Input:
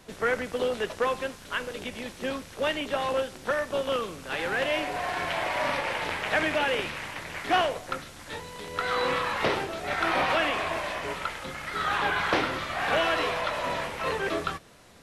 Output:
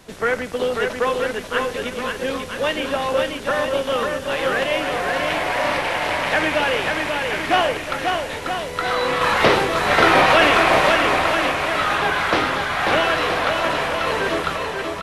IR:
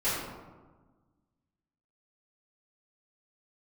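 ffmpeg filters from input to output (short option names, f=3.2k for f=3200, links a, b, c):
-filter_complex "[0:a]asettb=1/sr,asplit=3[a][b][c];[a]atrim=end=9.214[d];[b]atrim=start=9.21:end=10.96,asetpts=PTS-STARTPTS,afade=t=in:d=0.004:c=qsin,afade=t=out:st=1.746:d=0.004:c=qsin,acontrast=35[e];[c]atrim=start=10.956[f];[d][e]acrossfade=d=0.004:c1=hsin:c2=qsin[g];[g][f]acrossfade=d=0.004:c1=qsin:c2=hsin,aecho=1:1:540|972|1318|1594|1815:0.631|0.398|0.251|0.158|0.1,volume=5.5dB"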